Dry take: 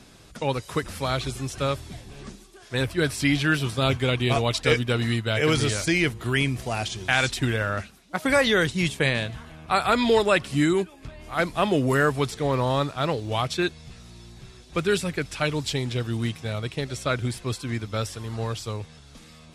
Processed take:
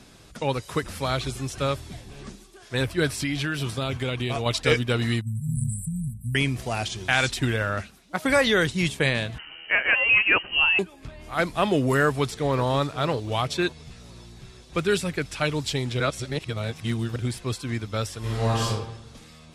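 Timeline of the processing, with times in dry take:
0:03.16–0:04.46: downward compressor, threshold −23 dBFS
0:05.21–0:06.35: linear-phase brick-wall band-stop 240–7,600 Hz
0:09.38–0:10.79: voice inversion scrambler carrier 3,000 Hz
0:12.04–0:12.66: delay throw 530 ms, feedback 40%, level −16 dB
0:16.00–0:17.16: reverse
0:18.19–0:18.67: thrown reverb, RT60 0.97 s, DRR −7.5 dB

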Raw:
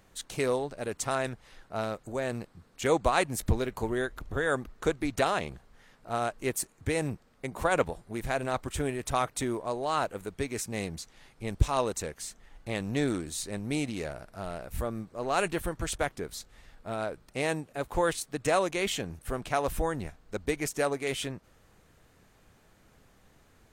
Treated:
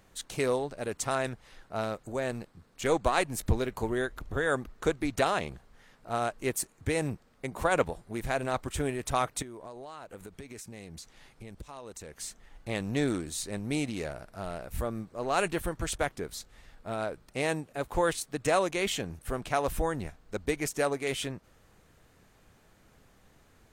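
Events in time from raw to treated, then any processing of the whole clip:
0:02.31–0:03.51: gain on one half-wave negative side −3 dB
0:09.42–0:12.21: downward compressor 10 to 1, threshold −40 dBFS

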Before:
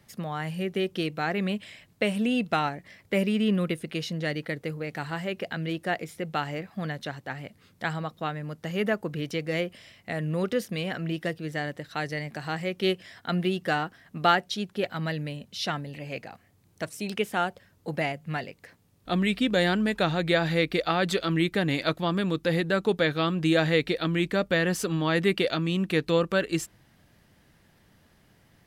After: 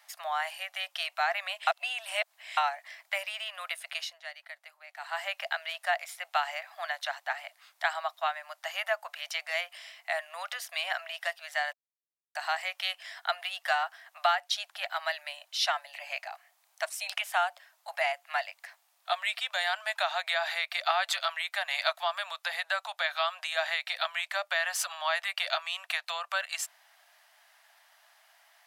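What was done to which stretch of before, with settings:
0:01.67–0:02.57: reverse
0:03.89–0:05.26: duck −13 dB, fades 0.29 s
0:11.73–0:12.35: silence
whole clip: downward compressor, threshold −25 dBFS; Butterworth high-pass 630 Hz 96 dB per octave; level +4 dB

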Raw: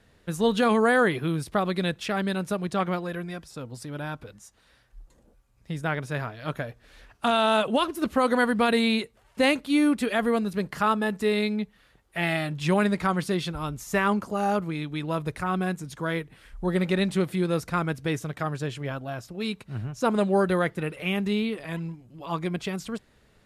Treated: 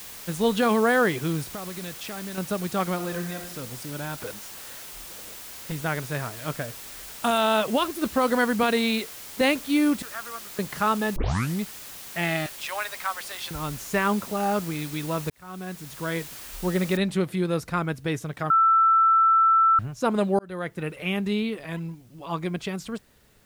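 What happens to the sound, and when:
0:01.49–0:02.38: downward compressor 4 to 1, threshold −34 dBFS
0:02.94–0:03.51: thrown reverb, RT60 1.1 s, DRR 5 dB
0:04.20–0:05.72: mid-hump overdrive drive 23 dB, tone 1,400 Hz, clips at −23 dBFS
0:06.61–0:07.38: high shelf with overshoot 5,900 Hz +7.5 dB, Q 1.5
0:08.63–0:09.41: high-pass filter 190 Hz
0:10.02–0:10.59: resonant band-pass 1,300 Hz, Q 4.6
0:11.16: tape start 0.45 s
0:12.46–0:13.51: Bessel high-pass filter 990 Hz, order 8
0:15.30–0:16.19: fade in
0:16.97: noise floor change −41 dB −65 dB
0:18.50–0:19.79: beep over 1,330 Hz −15 dBFS
0:20.39–0:20.89: fade in

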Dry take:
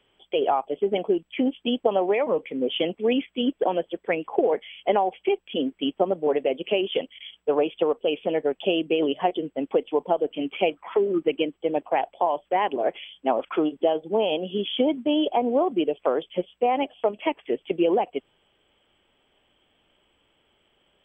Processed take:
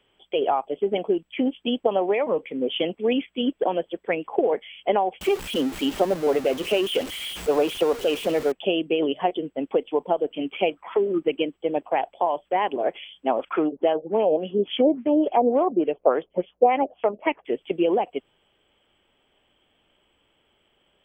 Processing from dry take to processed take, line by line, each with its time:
0:05.21–0:08.52: converter with a step at zero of −29.5 dBFS
0:13.53–0:17.45: auto-filter low-pass sine 3.5 Hz 490–2,500 Hz

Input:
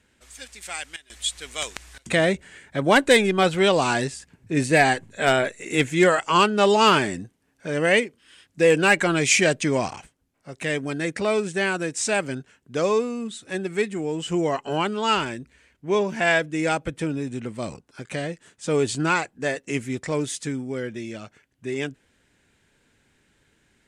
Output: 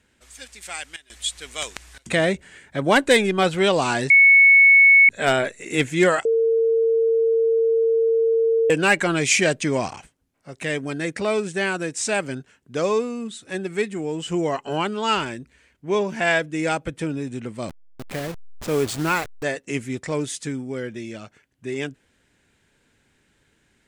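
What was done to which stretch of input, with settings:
0:04.10–0:05.09: beep over 2,210 Hz −8.5 dBFS
0:06.25–0:08.70: beep over 454 Hz −15.5 dBFS
0:17.69–0:19.43: hold until the input has moved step −29 dBFS

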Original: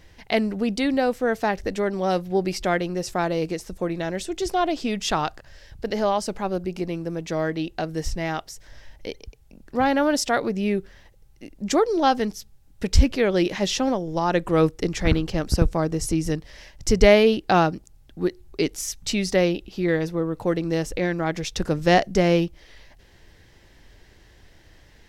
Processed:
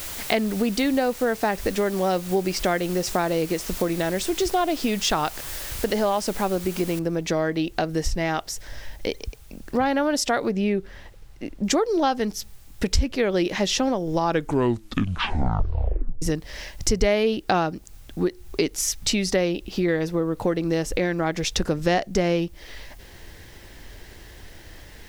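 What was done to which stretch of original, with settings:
0:06.99: noise floor change −43 dB −65 dB
0:10.50–0:11.63: low-pass filter 4,900 Hz → 2,400 Hz 6 dB per octave
0:14.20: tape stop 2.02 s
whole clip: downward compressor 3 to 1, threshold −30 dBFS; parametric band 140 Hz −2.5 dB; level +8.5 dB

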